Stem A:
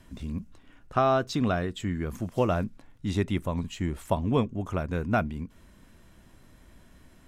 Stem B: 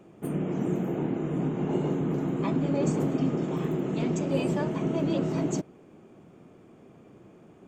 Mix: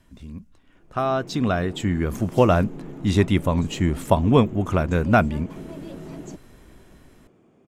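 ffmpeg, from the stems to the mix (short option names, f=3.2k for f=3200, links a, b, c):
-filter_complex "[0:a]dynaudnorm=f=320:g=9:m=6dB,volume=-4dB[a];[1:a]acompressor=threshold=-33dB:ratio=3,adelay=750,volume=-10dB[b];[a][b]amix=inputs=2:normalize=0,dynaudnorm=f=320:g=9:m=8dB"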